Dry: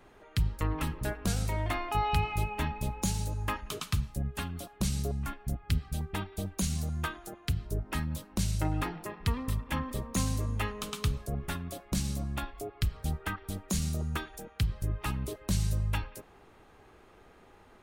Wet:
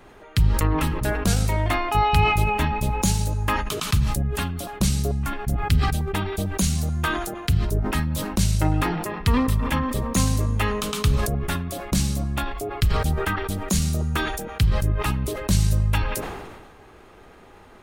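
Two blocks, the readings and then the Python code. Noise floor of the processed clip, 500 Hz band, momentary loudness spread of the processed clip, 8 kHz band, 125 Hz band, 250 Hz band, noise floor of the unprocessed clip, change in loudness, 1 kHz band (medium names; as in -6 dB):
-48 dBFS, +11.5 dB, 6 LU, +9.5 dB, +9.5 dB, +10.0 dB, -57 dBFS, +10.0 dB, +11.0 dB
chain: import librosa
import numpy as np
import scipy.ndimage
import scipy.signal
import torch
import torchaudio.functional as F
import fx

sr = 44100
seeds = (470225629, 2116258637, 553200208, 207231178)

y = fx.sustainer(x, sr, db_per_s=38.0)
y = y * librosa.db_to_amplitude(8.5)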